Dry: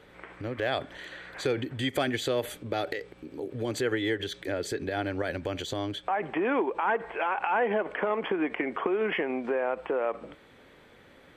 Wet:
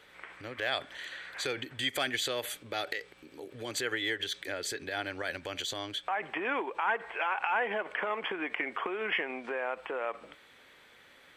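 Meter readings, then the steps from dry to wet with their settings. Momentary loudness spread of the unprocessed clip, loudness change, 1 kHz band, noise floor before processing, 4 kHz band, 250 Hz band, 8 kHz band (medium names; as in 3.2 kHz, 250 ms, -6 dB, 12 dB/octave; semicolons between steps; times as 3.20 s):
11 LU, -3.5 dB, -3.5 dB, -55 dBFS, +2.5 dB, -10.5 dB, +3.5 dB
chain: tilt shelf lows -8 dB, about 800 Hz; trim -4.5 dB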